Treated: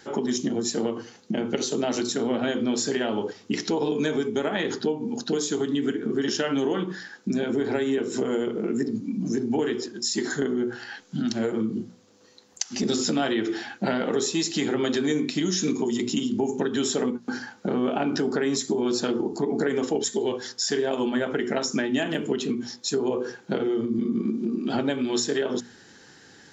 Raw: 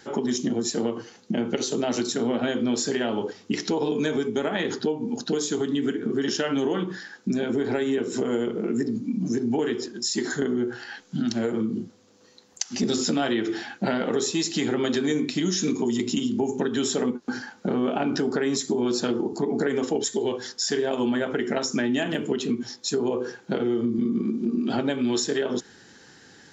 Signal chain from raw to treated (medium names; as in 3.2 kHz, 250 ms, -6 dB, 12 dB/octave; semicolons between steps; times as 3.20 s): hum notches 60/120/180/240 Hz